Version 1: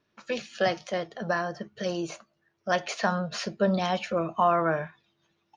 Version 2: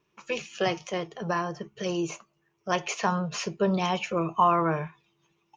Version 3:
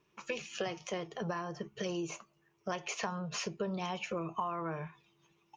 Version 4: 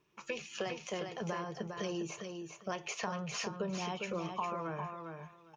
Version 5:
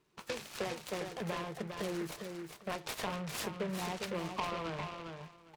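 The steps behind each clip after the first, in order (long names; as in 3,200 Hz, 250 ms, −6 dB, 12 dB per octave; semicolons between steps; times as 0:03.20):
EQ curve with evenly spaced ripples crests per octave 0.73, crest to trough 9 dB
downward compressor 6 to 1, threshold −34 dBFS, peak gain reduction 16 dB
repeating echo 404 ms, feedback 17%, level −6 dB; level −1.5 dB
short delay modulated by noise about 1,400 Hz, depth 0.089 ms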